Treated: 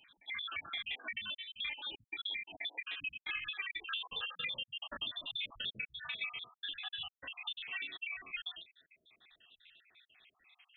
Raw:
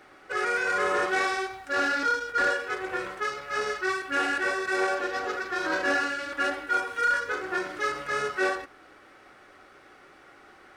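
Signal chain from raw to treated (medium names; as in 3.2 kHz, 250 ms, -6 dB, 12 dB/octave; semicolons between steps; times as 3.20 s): random holes in the spectrogram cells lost 72%; Doppler pass-by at 4.24 s, 23 m/s, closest 21 m; compression 8:1, threshold -46 dBFS, peak gain reduction 18 dB; frequency inversion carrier 3.9 kHz; trim +8.5 dB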